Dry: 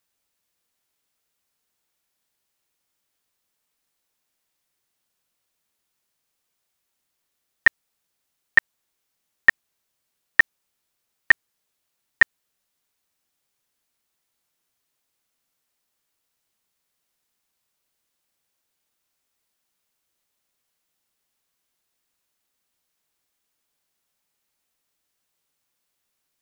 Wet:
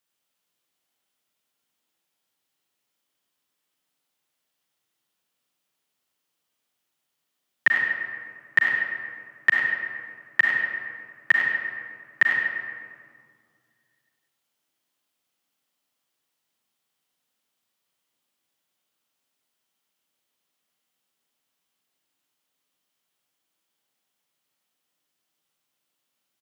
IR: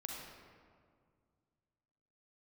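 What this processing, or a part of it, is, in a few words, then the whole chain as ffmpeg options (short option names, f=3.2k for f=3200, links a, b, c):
PA in a hall: -filter_complex "[0:a]highpass=f=110:w=0.5412,highpass=f=110:w=1.3066,equalizer=f=3.1k:t=o:w=0.28:g=5,aecho=1:1:97:0.335[a];[1:a]atrim=start_sample=2205[b];[a][b]afir=irnorm=-1:irlink=0"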